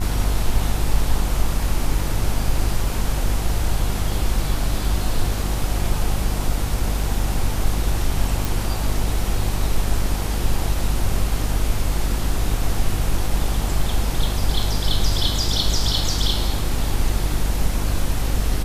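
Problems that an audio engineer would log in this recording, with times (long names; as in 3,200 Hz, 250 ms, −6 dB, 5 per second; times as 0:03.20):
mains buzz 50 Hz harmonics 28 −24 dBFS
0:08.45: click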